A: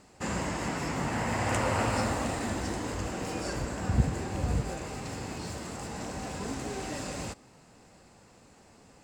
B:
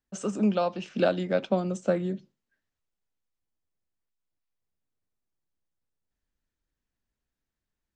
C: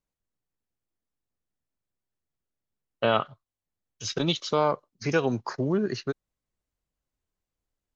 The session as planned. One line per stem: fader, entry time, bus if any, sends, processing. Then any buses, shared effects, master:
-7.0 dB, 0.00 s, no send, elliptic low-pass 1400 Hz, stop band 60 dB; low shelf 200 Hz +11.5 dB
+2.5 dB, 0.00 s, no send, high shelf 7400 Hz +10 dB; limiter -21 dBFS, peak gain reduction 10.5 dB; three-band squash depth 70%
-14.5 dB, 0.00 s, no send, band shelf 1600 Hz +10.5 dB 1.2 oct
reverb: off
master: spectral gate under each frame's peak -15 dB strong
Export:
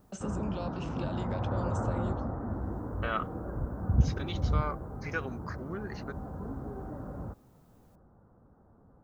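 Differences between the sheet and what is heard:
stem B +2.5 dB -> -9.0 dB; master: missing spectral gate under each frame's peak -15 dB strong

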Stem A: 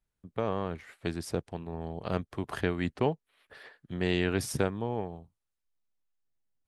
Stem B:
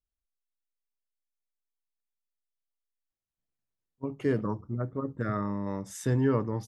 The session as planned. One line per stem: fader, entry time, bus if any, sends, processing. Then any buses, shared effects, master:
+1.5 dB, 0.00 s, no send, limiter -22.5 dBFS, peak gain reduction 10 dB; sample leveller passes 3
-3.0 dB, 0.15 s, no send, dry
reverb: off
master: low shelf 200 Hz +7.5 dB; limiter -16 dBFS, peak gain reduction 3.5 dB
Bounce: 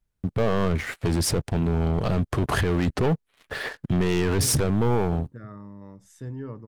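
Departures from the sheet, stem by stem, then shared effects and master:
stem A +1.5 dB -> +7.5 dB; stem B -3.0 dB -> -13.5 dB

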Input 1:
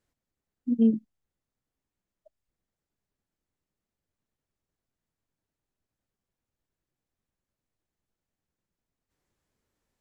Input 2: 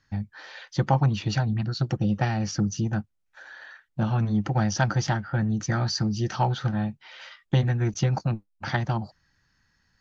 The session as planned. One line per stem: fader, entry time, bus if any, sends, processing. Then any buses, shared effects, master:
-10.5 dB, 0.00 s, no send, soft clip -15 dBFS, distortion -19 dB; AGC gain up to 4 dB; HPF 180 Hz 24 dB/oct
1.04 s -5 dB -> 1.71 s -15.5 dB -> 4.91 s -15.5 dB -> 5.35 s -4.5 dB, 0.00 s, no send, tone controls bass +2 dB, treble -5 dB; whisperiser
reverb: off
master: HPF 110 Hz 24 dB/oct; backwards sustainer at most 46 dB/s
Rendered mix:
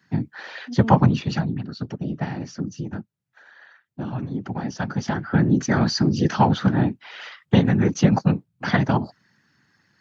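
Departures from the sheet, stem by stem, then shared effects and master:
stem 2 -5.0 dB -> +6.0 dB; master: missing backwards sustainer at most 46 dB/s

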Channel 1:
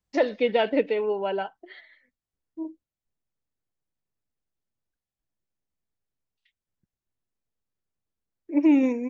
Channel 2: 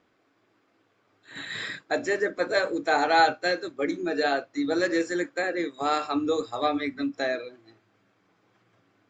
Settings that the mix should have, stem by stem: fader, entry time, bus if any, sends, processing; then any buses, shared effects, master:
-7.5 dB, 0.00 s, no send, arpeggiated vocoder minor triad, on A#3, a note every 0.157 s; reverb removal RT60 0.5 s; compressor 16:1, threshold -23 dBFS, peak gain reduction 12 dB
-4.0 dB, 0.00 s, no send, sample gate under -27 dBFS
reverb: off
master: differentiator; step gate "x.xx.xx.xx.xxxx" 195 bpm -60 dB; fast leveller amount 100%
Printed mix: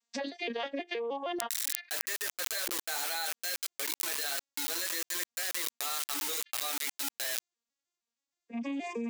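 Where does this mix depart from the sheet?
stem 1 -7.5 dB -> -14.5 dB; master: missing step gate "x.xx.xx.xx.xxxx" 195 bpm -60 dB

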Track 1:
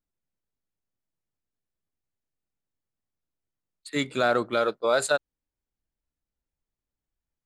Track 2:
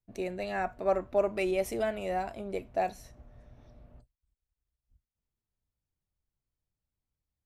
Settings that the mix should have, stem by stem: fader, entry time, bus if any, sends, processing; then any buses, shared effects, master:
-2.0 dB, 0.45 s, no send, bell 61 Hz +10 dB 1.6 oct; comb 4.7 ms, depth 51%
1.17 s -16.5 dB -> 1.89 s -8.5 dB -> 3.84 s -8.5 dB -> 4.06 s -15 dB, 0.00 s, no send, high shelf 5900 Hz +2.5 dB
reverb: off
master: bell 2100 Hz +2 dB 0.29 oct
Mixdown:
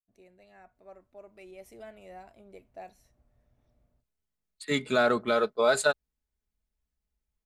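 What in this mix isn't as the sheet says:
stem 1: entry 0.45 s -> 0.75 s; stem 2 -16.5 dB -> -23.0 dB

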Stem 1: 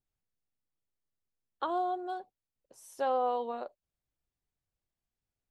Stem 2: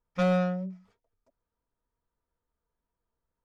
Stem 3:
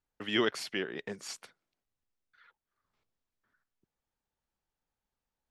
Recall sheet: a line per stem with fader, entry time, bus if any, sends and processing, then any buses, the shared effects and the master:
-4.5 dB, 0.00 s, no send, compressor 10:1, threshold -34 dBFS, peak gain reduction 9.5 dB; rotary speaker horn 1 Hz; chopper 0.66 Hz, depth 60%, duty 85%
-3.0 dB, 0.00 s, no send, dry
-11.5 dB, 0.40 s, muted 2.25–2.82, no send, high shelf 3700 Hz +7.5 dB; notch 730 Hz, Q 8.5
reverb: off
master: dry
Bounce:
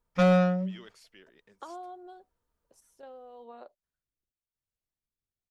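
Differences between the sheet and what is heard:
stem 2 -3.0 dB -> +3.5 dB; stem 3 -11.5 dB -> -22.5 dB

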